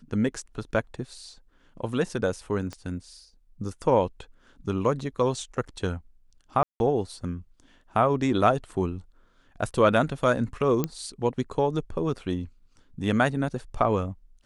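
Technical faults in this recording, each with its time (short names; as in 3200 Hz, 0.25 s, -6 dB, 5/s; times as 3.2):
2.73 pop -23 dBFS
6.63–6.8 gap 0.171 s
10.84 pop -12 dBFS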